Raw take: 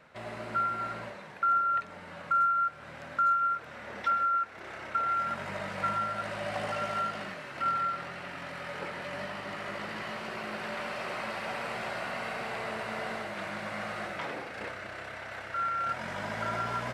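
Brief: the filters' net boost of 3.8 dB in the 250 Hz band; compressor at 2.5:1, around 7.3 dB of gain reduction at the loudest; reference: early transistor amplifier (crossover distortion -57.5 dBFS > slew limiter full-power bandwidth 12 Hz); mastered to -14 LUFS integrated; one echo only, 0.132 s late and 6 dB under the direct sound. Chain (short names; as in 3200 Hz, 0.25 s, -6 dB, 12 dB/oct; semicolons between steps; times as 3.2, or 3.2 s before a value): bell 250 Hz +5 dB; compressor 2.5:1, threshold -35 dBFS; echo 0.132 s -6 dB; crossover distortion -57.5 dBFS; slew limiter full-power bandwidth 12 Hz; gain +26.5 dB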